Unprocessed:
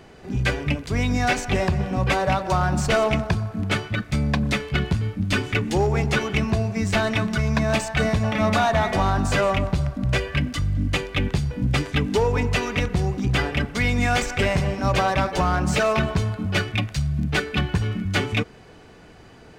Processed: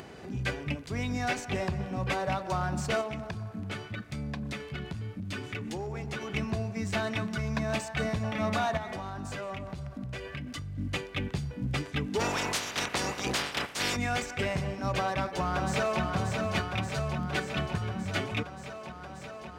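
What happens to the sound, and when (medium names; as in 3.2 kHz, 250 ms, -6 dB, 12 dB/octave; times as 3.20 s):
3.01–6.28 s: compression 4:1, threshold -23 dBFS
8.77–10.78 s: compression, threshold -24 dBFS
12.19–13.95 s: spectral peaks clipped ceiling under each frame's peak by 29 dB
14.97–16.02 s: echo throw 580 ms, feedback 75%, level -4.5 dB
whole clip: high-pass 73 Hz; upward compressor, threshold -28 dBFS; trim -9 dB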